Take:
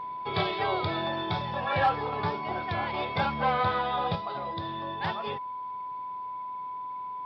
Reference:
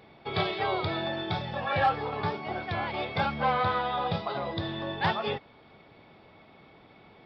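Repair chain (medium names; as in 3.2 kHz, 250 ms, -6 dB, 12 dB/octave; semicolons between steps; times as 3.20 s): band-stop 1 kHz, Q 30; trim 0 dB, from 4.15 s +5 dB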